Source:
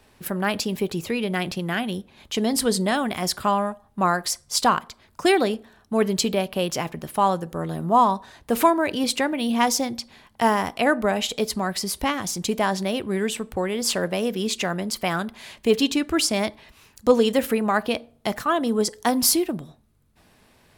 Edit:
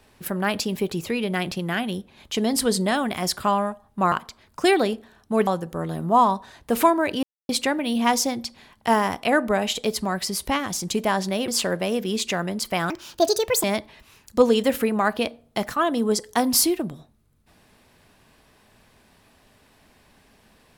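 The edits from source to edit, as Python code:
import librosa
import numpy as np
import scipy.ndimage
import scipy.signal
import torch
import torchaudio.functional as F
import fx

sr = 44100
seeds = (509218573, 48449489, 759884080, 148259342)

y = fx.edit(x, sr, fx.cut(start_s=4.12, length_s=0.61),
    fx.cut(start_s=6.08, length_s=1.19),
    fx.insert_silence(at_s=9.03, length_s=0.26),
    fx.cut(start_s=13.02, length_s=0.77),
    fx.speed_span(start_s=15.21, length_s=1.12, speed=1.52), tone=tone)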